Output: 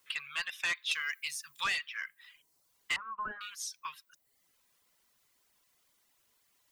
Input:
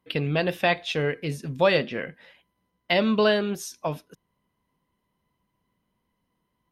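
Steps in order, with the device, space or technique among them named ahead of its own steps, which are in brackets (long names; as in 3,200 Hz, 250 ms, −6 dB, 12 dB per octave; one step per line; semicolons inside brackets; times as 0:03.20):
elliptic high-pass filter 1,100 Hz, stop band 40 dB
compact cassette (soft clipping −26.5 dBFS, distortion −8 dB; low-pass filter 10,000 Hz; tape wow and flutter 20 cents; white noise bed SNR 31 dB)
0:02.96–0:03.41: low-pass filter 1,300 Hz 24 dB per octave
reverb reduction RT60 0.75 s
0:00.91–0:01.64: high-shelf EQ 4,600 Hz +11.5 dB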